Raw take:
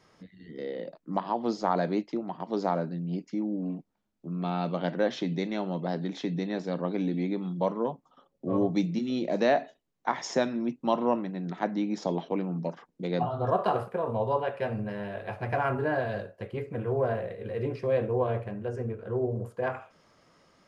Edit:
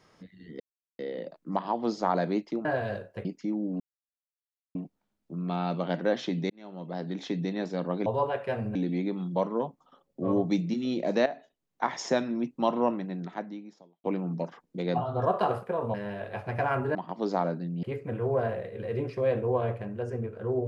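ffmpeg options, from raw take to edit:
-filter_complex "[0:a]asplit=13[s0][s1][s2][s3][s4][s5][s6][s7][s8][s9][s10][s11][s12];[s0]atrim=end=0.6,asetpts=PTS-STARTPTS,afade=t=out:st=0.596:d=0.004:c=hsin,apad=pad_dur=0.39[s13];[s1]atrim=start=0.6:end=2.262,asetpts=PTS-STARTPTS,afade=t=in:d=0.004:c=hsin[s14];[s2]atrim=start=15.888:end=16.492[s15];[s3]atrim=start=3.138:end=3.69,asetpts=PTS-STARTPTS,afade=t=out:st=0.548:d=0.004:c=hsin,apad=pad_dur=0.95[s16];[s4]atrim=start=3.69:end=5.44,asetpts=PTS-STARTPTS,afade=t=in:d=0.004:c=hsin,afade=t=out:st=1.746:d=0.004:c=hsin[s17];[s5]atrim=start=5.44:end=7.002,asetpts=PTS-STARTPTS,afade=t=in:d=0.75[s18];[s6]atrim=start=14.188:end=14.882[s19];[s7]atrim=start=6.998:end=9.51,asetpts=PTS-STARTPTS,afade=t=out:st=2.508:d=0.004:c=hsin:silence=0.199526[s20];[s8]atrim=start=9.51:end=12.29,asetpts=PTS-STARTPTS,afade=t=in:d=0.58:silence=0.199526,afade=t=out:st=1.86:d=0.92:c=qua[s21];[s9]atrim=start=12.29:end=14.192,asetpts=PTS-STARTPTS,afade=t=in:d=0.004:c=hsin[s22];[s10]atrim=start=14.878:end=15.892[s23];[s11]atrim=start=2.258:end=3.142[s24];[s12]atrim=start=16.488[s25];[s13][s14]concat=n=2:v=0:a=1[s26];[s26][s15]acrossfade=d=0.004:c1=hsin:c2=hsin[s27];[s16][s17][s18]concat=n=3:v=0:a=1[s28];[s27][s28]acrossfade=d=0.004:c1=hsin:c2=hsin[s29];[s29][s19]acrossfade=d=0.004:c1=hsin:c2=hsin[s30];[s20][s21][s22]concat=n=3:v=0:a=1[s31];[s30][s31]acrossfade=d=0.004:c1=hsin:c2=hsin[s32];[s32][s23]acrossfade=d=0.004:c1=hsin:c2=hsin[s33];[s33][s24]acrossfade=d=0.004:c1=hsin:c2=hsin[s34];[s34][s25]acrossfade=d=0.004:c1=hsin:c2=hsin"

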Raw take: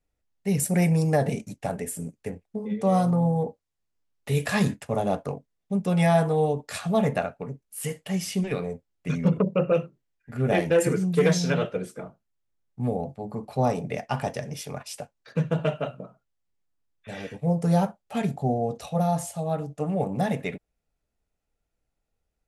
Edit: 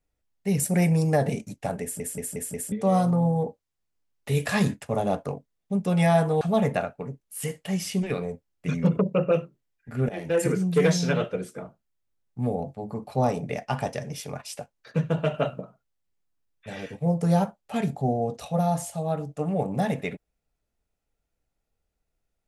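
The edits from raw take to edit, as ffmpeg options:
-filter_complex "[0:a]asplit=10[s0][s1][s2][s3][s4][s5][s6][s7][s8][s9];[s0]atrim=end=2.002[s10];[s1]atrim=start=1.818:end=2.002[s11];[s2]atrim=start=1.818:end=2.002[s12];[s3]atrim=start=1.818:end=2.002[s13];[s4]atrim=start=1.818:end=2.002[s14];[s5]atrim=start=2.718:end=6.412[s15];[s6]atrim=start=6.818:end=10.5,asetpts=PTS-STARTPTS,afade=t=out:st=3.678:d=0.004:c=hsin:silence=0.0944061[s16];[s7]atrim=start=10.5:end=15.752,asetpts=PTS-STARTPTS,afade=t=in:d=0.4:silence=0.0944061[s17];[s8]atrim=start=15.748:end=16.022,asetpts=PTS-STARTPTS,volume=1.68[s18];[s9]atrim=start=16.018[s19];[s10][s11]acrossfade=d=0.004:c1=hsin:c2=hsin[s20];[s20][s12]acrossfade=d=0.004:c1=hsin:c2=hsin[s21];[s21][s13]acrossfade=d=0.004:c1=hsin:c2=hsin[s22];[s22][s14]acrossfade=d=0.004:c1=hsin:c2=hsin[s23];[s23][s15]acrossfade=d=0.004:c1=hsin:c2=hsin[s24];[s16][s17]concat=n=2:v=0:a=1[s25];[s24][s25]acrossfade=d=0.004:c1=hsin:c2=hsin[s26];[s26][s18]acrossfade=d=0.004:c1=hsin:c2=hsin[s27];[s27][s19]acrossfade=d=0.004:c1=hsin:c2=hsin"

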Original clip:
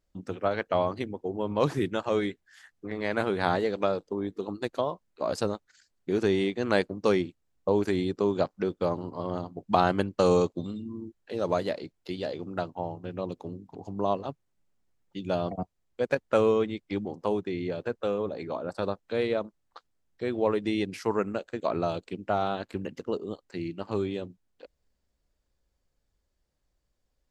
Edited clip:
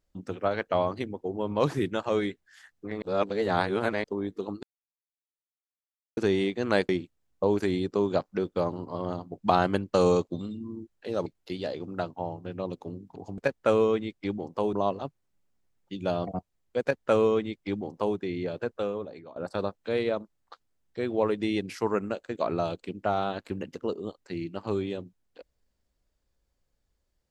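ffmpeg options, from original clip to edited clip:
-filter_complex "[0:a]asplit=10[s0][s1][s2][s3][s4][s5][s6][s7][s8][s9];[s0]atrim=end=3.022[s10];[s1]atrim=start=3.018:end=4.042,asetpts=PTS-STARTPTS,areverse[s11];[s2]atrim=start=4.038:end=4.63,asetpts=PTS-STARTPTS,afade=t=out:st=0.588:d=0.004:c=hsin[s12];[s3]atrim=start=4.63:end=6.17,asetpts=PTS-STARTPTS,volume=0[s13];[s4]atrim=start=6.17:end=6.892,asetpts=PTS-STARTPTS,afade=t=in:d=0.004:c=hsin[s14];[s5]atrim=start=7.138:end=11.512[s15];[s6]atrim=start=11.848:end=13.972[s16];[s7]atrim=start=16.048:end=17.402[s17];[s8]atrim=start=13.968:end=18.6,asetpts=PTS-STARTPTS,afade=t=out:st=4.002:d=0.63:silence=0.112202[s18];[s9]atrim=start=18.6,asetpts=PTS-STARTPTS,afade=t=in:d=0.004:c=hsin:silence=0.112202[s19];[s10][s11]acrossfade=d=0.004:c1=hsin:c2=hsin[s20];[s12][s13][s14]concat=n=3:v=0:a=1[s21];[s20][s21]acrossfade=d=0.004:c1=hsin:c2=hsin[s22];[s22][s15]acrossfade=d=0.004:c1=hsin:c2=hsin[s23];[s23][s16]acrossfade=d=0.004:c1=hsin:c2=hsin[s24];[s24][s17]acrossfade=d=0.004:c1=hsin:c2=hsin[s25];[s18][s19]concat=n=2:v=0:a=1[s26];[s25][s26]acrossfade=d=0.004:c1=hsin:c2=hsin"

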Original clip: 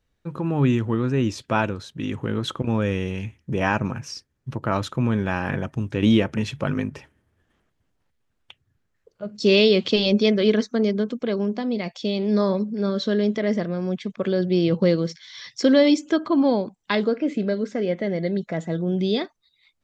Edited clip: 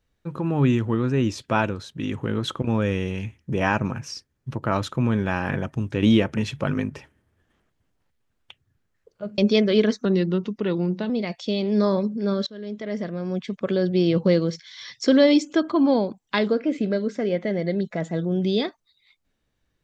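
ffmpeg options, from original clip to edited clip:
-filter_complex "[0:a]asplit=5[s0][s1][s2][s3][s4];[s0]atrim=end=9.382[s5];[s1]atrim=start=10.078:end=10.754[s6];[s2]atrim=start=10.75:end=11.66,asetpts=PTS-STARTPTS,asetrate=38367,aresample=44100[s7];[s3]atrim=start=11.656:end=13.03,asetpts=PTS-STARTPTS,afade=t=out:st=1.37:d=0.004:c=hsin:silence=0.0668344[s8];[s4]atrim=start=13.03,asetpts=PTS-STARTPTS,afade=t=in:d=1.04:silence=0.0668344[s9];[s5][s6]acrossfade=d=0.004:c1=hsin:c2=hsin[s10];[s10][s7]acrossfade=d=0.004:c1=hsin:c2=hsin[s11];[s8][s9]concat=n=2:v=0:a=1[s12];[s11][s12]acrossfade=d=0.004:c1=hsin:c2=hsin"

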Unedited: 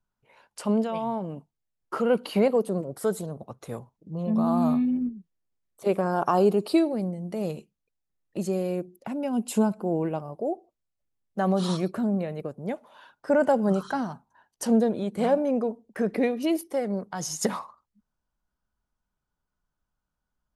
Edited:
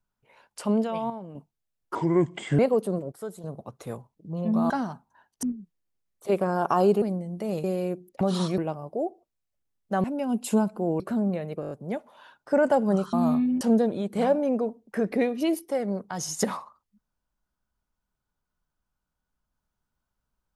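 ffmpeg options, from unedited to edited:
-filter_complex "[0:a]asplit=22[s0][s1][s2][s3][s4][s5][s6][s7][s8][s9][s10][s11][s12][s13][s14][s15][s16][s17][s18][s19][s20][s21];[s0]atrim=end=1.102[s22];[s1]atrim=start=1.098:end=1.352,asetpts=PTS-STARTPTS,volume=0.422[s23];[s2]atrim=start=1.348:end=1.954[s24];[s3]atrim=start=1.95:end=2.41,asetpts=PTS-STARTPTS,asetrate=31752,aresample=44100[s25];[s4]atrim=start=2.406:end=2.942[s26];[s5]atrim=start=2.938:end=3.262,asetpts=PTS-STARTPTS,volume=0.316[s27];[s6]atrim=start=3.258:end=4.522[s28];[s7]atrim=start=13.898:end=14.632[s29];[s8]atrim=start=4.998:end=6.592[s30];[s9]atrim=start=6.938:end=7.562[s31];[s10]atrim=start=8.508:end=9.082[s32];[s11]atrim=start=11.498:end=11.872[s33];[s12]atrim=start=10.038:end=11.502[s34];[s13]atrim=start=9.078:end=10.042[s35];[s14]atrim=start=11.868:end=12.502[s36];[s15]atrim=start=12.478:end=12.502[s37];[s16]atrim=start=12.478:end=12.502[s38];[s17]atrim=start=12.478:end=12.502[s39];[s18]atrim=start=12.478:end=12.502[s40];[s19]atrim=start=12.478:end=13.902[s41];[s20]atrim=start=4.518:end=5.002[s42];[s21]atrim=start=14.628[s43];[s22][s23]acrossfade=d=0.004:c1=hsin:c2=hsin[s44];[s44][s24]acrossfade=d=0.004:c1=hsin:c2=hsin[s45];[s45][s25]acrossfade=d=0.004:c1=hsin:c2=hsin[s46];[s46][s26]acrossfade=d=0.004:c1=hsin:c2=hsin[s47];[s47][s27]acrossfade=d=0.004:c1=hsin:c2=hsin[s48];[s48][s28]acrossfade=d=0.004:c1=hsin:c2=hsin[s49];[s49][s29]acrossfade=d=0.004:c1=hsin:c2=hsin[s50];[s50][s30]acrossfade=d=0.004:c1=hsin:c2=hsin[s51];[s51][s31]acrossfade=d=0.004:c1=hsin:c2=hsin[s52];[s52][s32]acrossfade=d=0.004:c1=hsin:c2=hsin[s53];[s53][s33]acrossfade=d=0.004:c1=hsin:c2=hsin[s54];[s54][s34]acrossfade=d=0.004:c1=hsin:c2=hsin[s55];[s55][s35]acrossfade=d=0.004:c1=hsin:c2=hsin[s56];[s56][s36]acrossfade=d=0.004:c1=hsin:c2=hsin[s57];[s57][s37]acrossfade=d=0.004:c1=hsin:c2=hsin[s58];[s58][s38]acrossfade=d=0.004:c1=hsin:c2=hsin[s59];[s59][s39]acrossfade=d=0.004:c1=hsin:c2=hsin[s60];[s60][s40]acrossfade=d=0.004:c1=hsin:c2=hsin[s61];[s61][s41]acrossfade=d=0.004:c1=hsin:c2=hsin[s62];[s62][s42]acrossfade=d=0.004:c1=hsin:c2=hsin[s63];[s63][s43]acrossfade=d=0.004:c1=hsin:c2=hsin"

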